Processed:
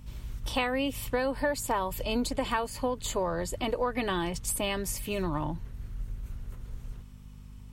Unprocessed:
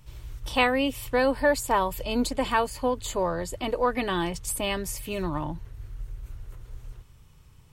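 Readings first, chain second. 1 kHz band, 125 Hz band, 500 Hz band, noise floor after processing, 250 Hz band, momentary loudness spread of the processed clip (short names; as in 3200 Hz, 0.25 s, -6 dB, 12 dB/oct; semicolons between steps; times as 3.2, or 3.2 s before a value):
-5.0 dB, -0.5 dB, -4.5 dB, -47 dBFS, -3.5 dB, 15 LU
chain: compressor 6:1, threshold -25 dBFS, peak gain reduction 8.5 dB; hum 50 Hz, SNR 15 dB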